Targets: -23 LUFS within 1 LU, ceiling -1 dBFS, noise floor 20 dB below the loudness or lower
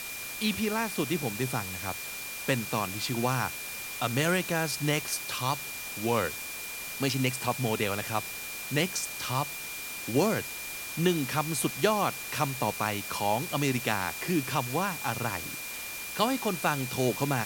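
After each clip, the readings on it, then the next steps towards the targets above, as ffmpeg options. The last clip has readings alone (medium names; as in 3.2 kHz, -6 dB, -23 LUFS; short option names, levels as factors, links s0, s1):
steady tone 2.4 kHz; tone level -40 dBFS; noise floor -39 dBFS; noise floor target -50 dBFS; loudness -30.0 LUFS; peak level -10.5 dBFS; loudness target -23.0 LUFS
-> -af "bandreject=f=2400:w=30"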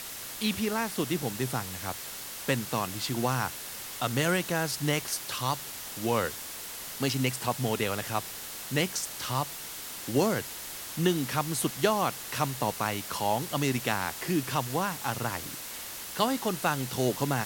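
steady tone not found; noise floor -40 dBFS; noise floor target -51 dBFS
-> -af "afftdn=nr=11:nf=-40"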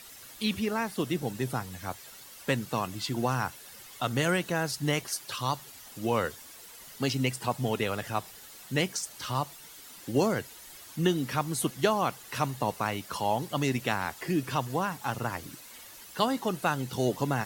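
noise floor -49 dBFS; noise floor target -51 dBFS
-> -af "afftdn=nr=6:nf=-49"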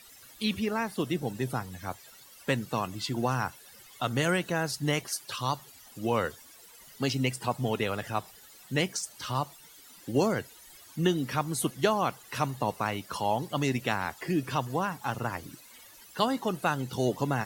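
noise floor -53 dBFS; loudness -31.0 LUFS; peak level -10.5 dBFS; loudness target -23.0 LUFS
-> -af "volume=2.51"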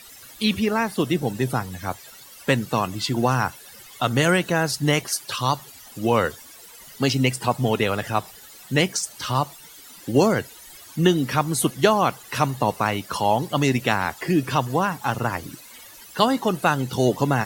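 loudness -23.0 LUFS; peak level -2.5 dBFS; noise floor -45 dBFS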